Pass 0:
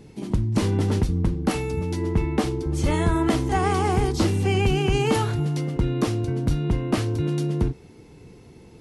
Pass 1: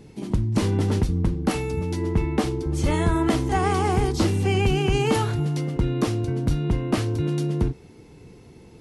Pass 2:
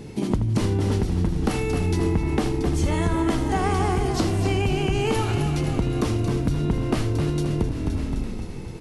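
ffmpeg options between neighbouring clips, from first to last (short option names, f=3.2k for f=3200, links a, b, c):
-af anull
-filter_complex "[0:a]asplit=2[a][b];[b]asplit=7[c][d][e][f][g][h][i];[c]adelay=260,afreqshift=-41,volume=-9dB[j];[d]adelay=520,afreqshift=-82,volume=-13.4dB[k];[e]adelay=780,afreqshift=-123,volume=-17.9dB[l];[f]adelay=1040,afreqshift=-164,volume=-22.3dB[m];[g]adelay=1300,afreqshift=-205,volume=-26.7dB[n];[h]adelay=1560,afreqshift=-246,volume=-31.2dB[o];[i]adelay=1820,afreqshift=-287,volume=-35.6dB[p];[j][k][l][m][n][o][p]amix=inputs=7:normalize=0[q];[a][q]amix=inputs=2:normalize=0,acompressor=threshold=-27dB:ratio=10,asplit=2[r][s];[s]aecho=0:1:79:0.282[t];[r][t]amix=inputs=2:normalize=0,volume=8dB"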